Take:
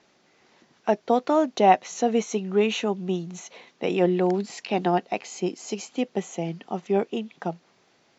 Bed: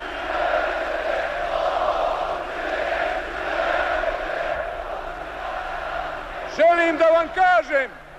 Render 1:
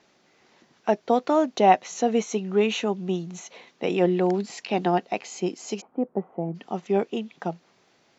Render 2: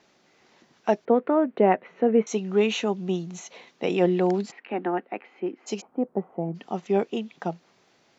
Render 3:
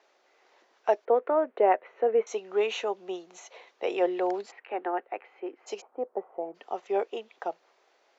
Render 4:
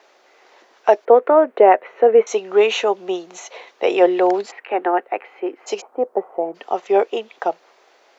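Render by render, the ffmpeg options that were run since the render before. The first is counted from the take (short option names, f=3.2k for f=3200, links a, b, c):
-filter_complex "[0:a]asplit=3[a][b][c];[a]afade=t=out:st=5.8:d=0.02[d];[b]lowpass=f=1.2k:w=0.5412,lowpass=f=1.2k:w=1.3066,afade=t=in:st=5.8:d=0.02,afade=t=out:st=6.54:d=0.02[e];[c]afade=t=in:st=6.54:d=0.02[f];[d][e][f]amix=inputs=3:normalize=0"
-filter_complex "[0:a]asettb=1/sr,asplit=3[a][b][c];[a]atrim=end=1.054[d];[b]atrim=start=1.05:end=2.27,asetpts=PTS-STARTPTS,afade=t=in:d=0.004:c=qsin,afade=t=out:st=1.216:d=0.004:c=qsin,highpass=110,equalizer=f=220:t=q:w=4:g=3,equalizer=f=440:t=q:w=4:g=5,equalizer=f=770:t=q:w=4:g=-7,equalizer=f=1.1k:t=q:w=4:g=-3,lowpass=f=2.1k:w=0.5412,lowpass=f=2.1k:w=1.3066[e];[c]atrim=start=2.266[f];[d][e]acrossfade=d=0.004:c1=hsin:c2=qsin[g];[g][f]acrossfade=d=0.004:c1=qsin:c2=hsin,asplit=3[h][i][j];[h]afade=t=out:st=4.5:d=0.02[k];[i]highpass=f=240:w=0.5412,highpass=f=240:w=1.3066,equalizer=f=440:t=q:w=4:g=-4,equalizer=f=660:t=q:w=4:g=-8,equalizer=f=1k:t=q:w=4:g=-5,lowpass=f=2.1k:w=0.5412,lowpass=f=2.1k:w=1.3066,afade=t=in:st=4.5:d=0.02,afade=t=out:st=5.66:d=0.02[l];[j]afade=t=in:st=5.66:d=0.02[m];[k][l][m]amix=inputs=3:normalize=0"
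-af "highpass=f=430:w=0.5412,highpass=f=430:w=1.3066,highshelf=f=2.4k:g=-8.5"
-af "volume=12dB,alimiter=limit=-1dB:level=0:latency=1"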